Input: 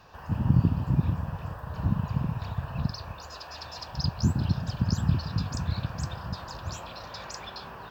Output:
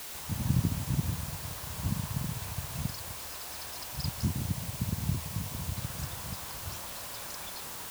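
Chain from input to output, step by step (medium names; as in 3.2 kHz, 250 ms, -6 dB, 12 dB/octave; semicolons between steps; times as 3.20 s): 4.26–5.77 s: elliptic low-pass 1.1 kHz; word length cut 6-bit, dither triangular; trim -6 dB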